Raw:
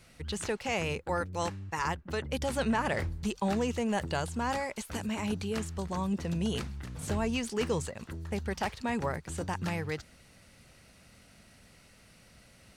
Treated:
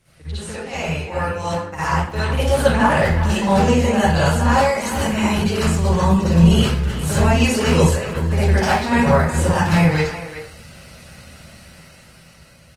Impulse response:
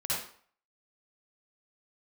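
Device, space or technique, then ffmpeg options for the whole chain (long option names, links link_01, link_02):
speakerphone in a meeting room: -filter_complex "[1:a]atrim=start_sample=2205[link_01];[0:a][link_01]afir=irnorm=-1:irlink=0,asplit=2[link_02][link_03];[link_03]adelay=370,highpass=300,lowpass=3400,asoftclip=type=hard:threshold=-19.5dB,volume=-11dB[link_04];[link_02][link_04]amix=inputs=2:normalize=0,dynaudnorm=framelen=530:gausssize=7:maxgain=14dB" -ar 48000 -c:a libopus -b:a 24k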